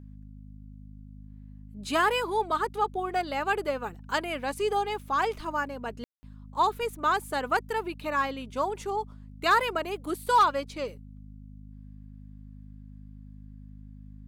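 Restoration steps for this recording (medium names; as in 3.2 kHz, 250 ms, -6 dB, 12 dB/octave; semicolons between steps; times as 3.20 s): clip repair -14.5 dBFS; de-hum 51.4 Hz, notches 5; room tone fill 6.04–6.23 s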